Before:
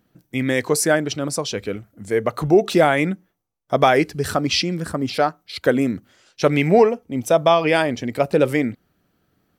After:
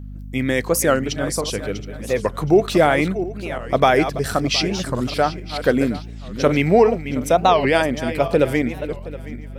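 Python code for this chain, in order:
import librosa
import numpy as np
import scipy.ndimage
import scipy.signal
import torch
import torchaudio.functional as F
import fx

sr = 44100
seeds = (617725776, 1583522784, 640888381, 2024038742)

y = fx.reverse_delay_fb(x, sr, ms=360, feedback_pct=46, wet_db=-11.0)
y = fx.add_hum(y, sr, base_hz=50, snr_db=14)
y = fx.record_warp(y, sr, rpm=45.0, depth_cents=250.0)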